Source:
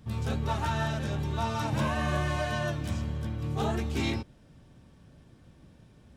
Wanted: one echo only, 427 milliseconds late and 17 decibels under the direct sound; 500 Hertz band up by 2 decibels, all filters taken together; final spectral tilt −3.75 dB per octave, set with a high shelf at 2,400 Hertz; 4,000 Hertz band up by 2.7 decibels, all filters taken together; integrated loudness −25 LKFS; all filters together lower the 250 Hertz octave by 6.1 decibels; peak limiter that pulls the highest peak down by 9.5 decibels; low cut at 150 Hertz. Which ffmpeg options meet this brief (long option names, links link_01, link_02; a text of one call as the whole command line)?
ffmpeg -i in.wav -af "highpass=150,equalizer=frequency=250:width_type=o:gain=-8.5,equalizer=frequency=500:width_type=o:gain=5,highshelf=frequency=2400:gain=-5,equalizer=frequency=4000:width_type=o:gain=7.5,alimiter=level_in=2.5dB:limit=-24dB:level=0:latency=1,volume=-2.5dB,aecho=1:1:427:0.141,volume=11dB" out.wav